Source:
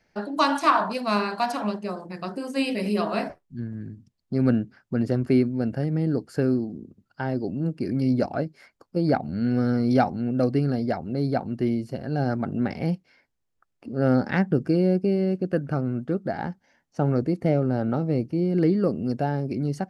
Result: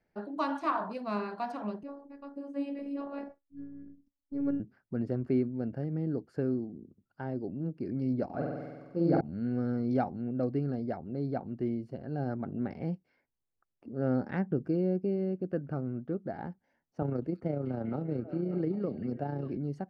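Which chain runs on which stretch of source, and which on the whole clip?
1.83–4.60 s: treble shelf 2 kHz -8 dB + robot voice 281 Hz
8.25–9.21 s: doubling 15 ms -12 dB + flutter echo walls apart 8.1 m, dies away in 1.4 s
17.02–19.57 s: AM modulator 29 Hz, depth 30% + repeats whose band climbs or falls 197 ms, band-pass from 3.5 kHz, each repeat -0.7 oct, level -3 dB + three bands compressed up and down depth 70%
whole clip: low-pass 1.3 kHz 6 dB/octave; peaking EQ 370 Hz +2 dB; trim -9 dB

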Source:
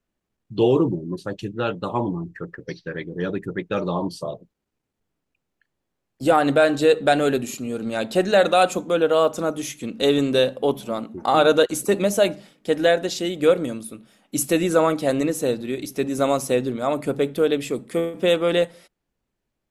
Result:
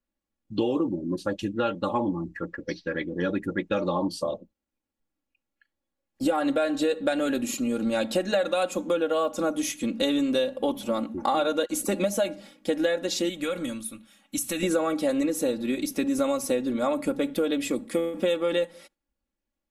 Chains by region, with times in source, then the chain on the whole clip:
13.29–14.63 s: peaking EQ 430 Hz -11 dB 2.1 oct + band-stop 4.9 kHz, Q 7.7 + compression, threshold -26 dBFS
whole clip: spectral noise reduction 9 dB; comb 3.6 ms, depth 73%; compression 6:1, threshold -22 dBFS

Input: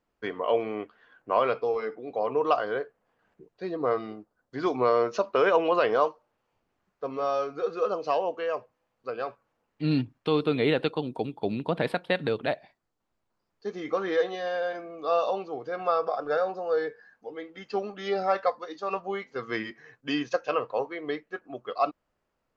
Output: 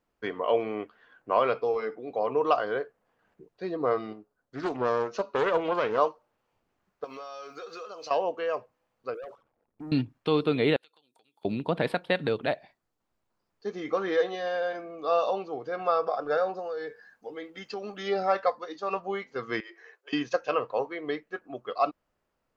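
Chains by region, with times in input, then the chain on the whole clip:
4.13–5.98 s: feedback comb 140 Hz, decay 0.36 s, mix 40% + loudspeaker Doppler distortion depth 0.26 ms
7.04–8.11 s: tilt EQ +4 dB/octave + compression 10:1, threshold -37 dBFS
9.14–9.92 s: resonances exaggerated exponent 3 + compression 4:1, threshold -43 dBFS + waveshaping leveller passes 2
10.76–11.45 s: compression, threshold -41 dBFS + differentiator
16.59–18.03 s: treble shelf 4 kHz +7.5 dB + compression 4:1, threshold -32 dBFS
19.60–20.13 s: compression 4:1, threshold -41 dBFS + Chebyshev high-pass 340 Hz, order 8
whole clip: none

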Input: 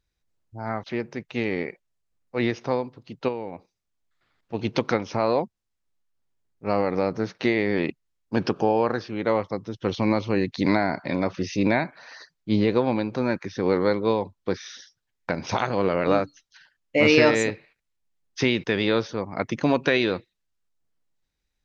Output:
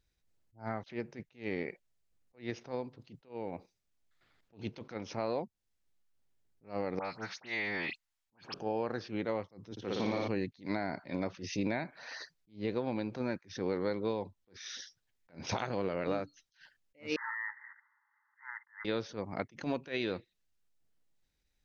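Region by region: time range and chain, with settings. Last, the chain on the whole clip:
6.99–8.54 s: resonant low shelf 620 Hz -11.5 dB, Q 1.5 + phase dispersion highs, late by 72 ms, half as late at 2.7 kHz
9.71–10.28 s: high-pass 180 Hz 6 dB/octave + flutter echo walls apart 9.8 m, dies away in 1.5 s
17.16–18.85 s: upward compressor, threshold -29 dBFS + hard clipper -16.5 dBFS + brick-wall FIR band-pass 820–2100 Hz
whole clip: compression 3:1, threshold -33 dBFS; peaking EQ 1.1 kHz -3.5 dB 0.65 oct; attacks held to a fixed rise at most 220 dB/s

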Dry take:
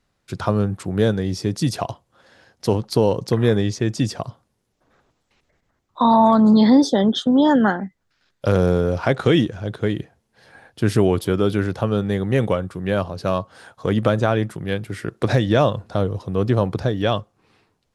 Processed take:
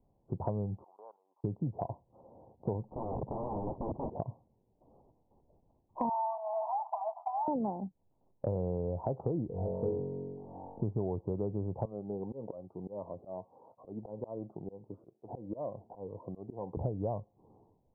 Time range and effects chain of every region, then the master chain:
0.84–1.44 s: elliptic band-pass 1–4.7 kHz, stop band 80 dB + level held to a coarse grid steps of 19 dB
2.84–4.10 s: tone controls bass +7 dB, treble +7 dB + compression 4:1, threshold -15 dBFS + integer overflow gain 22.5 dB
6.09–7.48 s: comb filter that takes the minimum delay 1 ms + brick-wall FIR high-pass 630 Hz + three bands compressed up and down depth 70%
9.47–10.83 s: comb 4.3 ms, depth 38% + flutter echo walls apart 3.7 m, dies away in 0.92 s
11.85–16.77 s: high-pass 880 Hz 6 dB/octave + slow attack 303 ms + Shepard-style phaser rising 1.6 Hz
whole clip: steep low-pass 960 Hz 72 dB/octave; dynamic bell 280 Hz, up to -5 dB, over -29 dBFS, Q 1.3; compression 3:1, threshold -35 dBFS

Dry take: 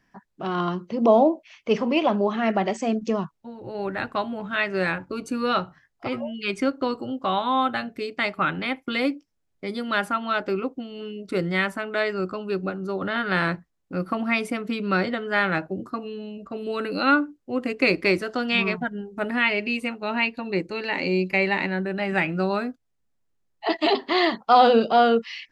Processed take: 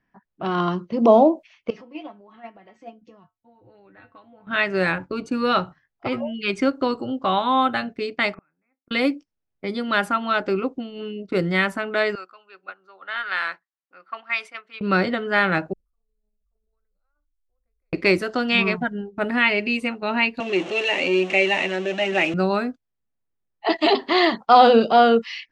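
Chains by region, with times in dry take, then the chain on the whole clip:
1.70–4.47 s: compression 2.5:1, threshold -30 dBFS + feedback comb 100 Hz, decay 0.15 s, harmonics odd, mix 90%
8.34–8.91 s: doubling 26 ms -13 dB + inverted gate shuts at -31 dBFS, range -40 dB + brick-wall FIR low-pass 2.7 kHz
12.15–14.81 s: high-pass 1.3 kHz + treble shelf 2.8 kHz -5.5 dB
15.73–17.93 s: inverse Chebyshev band-stop 110–6700 Hz, stop band 60 dB + level flattener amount 100%
20.40–22.34 s: jump at every zero crossing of -25.5 dBFS + flange 1.1 Hz, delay 0 ms, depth 2.3 ms, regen -62% + cabinet simulation 290–6900 Hz, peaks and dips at 350 Hz +5 dB, 650 Hz +7 dB, 940 Hz -4 dB, 1.5 kHz -5 dB, 2.8 kHz +10 dB, 4.8 kHz -9 dB
whole clip: gate -37 dBFS, range -9 dB; level-controlled noise filter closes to 2.9 kHz, open at -19.5 dBFS; trim +3 dB

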